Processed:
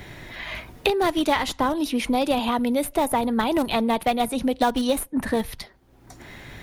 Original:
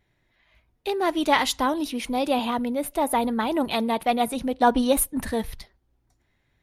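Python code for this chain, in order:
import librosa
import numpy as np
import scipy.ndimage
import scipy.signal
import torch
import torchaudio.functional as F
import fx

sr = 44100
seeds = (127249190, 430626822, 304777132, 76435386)

p1 = fx.schmitt(x, sr, flips_db=-18.5)
p2 = x + (p1 * 10.0 ** (-10.5 / 20.0))
y = fx.band_squash(p2, sr, depth_pct=100)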